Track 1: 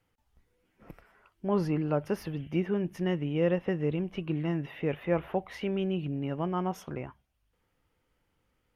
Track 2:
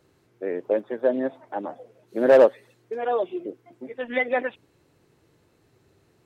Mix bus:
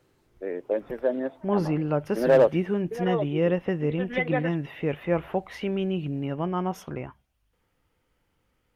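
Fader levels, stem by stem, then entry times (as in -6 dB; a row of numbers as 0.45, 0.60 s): +3.0, -3.5 dB; 0.00, 0.00 s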